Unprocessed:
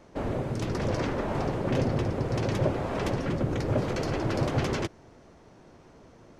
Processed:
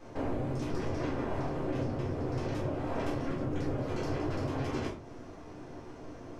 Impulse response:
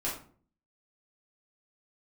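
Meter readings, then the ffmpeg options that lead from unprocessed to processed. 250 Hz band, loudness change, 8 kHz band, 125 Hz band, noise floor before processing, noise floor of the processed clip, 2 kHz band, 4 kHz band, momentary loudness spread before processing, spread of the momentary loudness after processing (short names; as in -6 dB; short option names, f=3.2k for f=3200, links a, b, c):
-4.0 dB, -5.5 dB, -9.0 dB, -6.5 dB, -54 dBFS, -47 dBFS, -7.0 dB, -8.5 dB, 4 LU, 13 LU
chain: -filter_complex "[0:a]acompressor=threshold=-38dB:ratio=6[a];[1:a]atrim=start_sample=2205[b];[a][b]afir=irnorm=-1:irlink=0"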